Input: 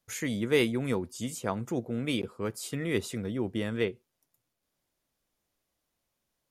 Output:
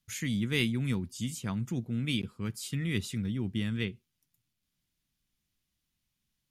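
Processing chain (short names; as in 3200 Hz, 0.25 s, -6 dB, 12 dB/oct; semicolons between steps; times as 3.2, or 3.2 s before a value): EQ curve 190 Hz 0 dB, 530 Hz -20 dB, 3000 Hz -2 dB, 8100 Hz -6 dB; gain +4 dB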